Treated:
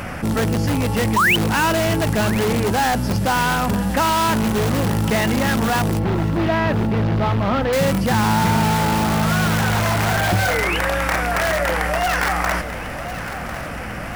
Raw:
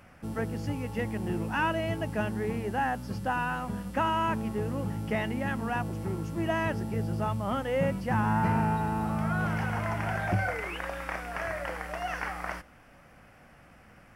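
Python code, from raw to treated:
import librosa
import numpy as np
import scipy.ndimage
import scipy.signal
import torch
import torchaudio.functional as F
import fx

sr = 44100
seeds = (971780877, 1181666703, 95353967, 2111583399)

p1 = fx.spec_paint(x, sr, seeds[0], shape='rise', start_s=1.16, length_s=0.2, low_hz=890.0, high_hz=3200.0, level_db=-22.0)
p2 = (np.mod(10.0 ** (27.5 / 20.0) * p1 + 1.0, 2.0) - 1.0) / 10.0 ** (27.5 / 20.0)
p3 = p1 + (p2 * librosa.db_to_amplitude(-4.0))
p4 = fx.air_absorb(p3, sr, metres=260.0, at=(5.99, 7.73))
p5 = fx.echo_feedback(p4, sr, ms=1049, feedback_pct=49, wet_db=-21.0)
p6 = fx.env_flatten(p5, sr, amount_pct=50)
y = p6 * librosa.db_to_amplitude(6.5)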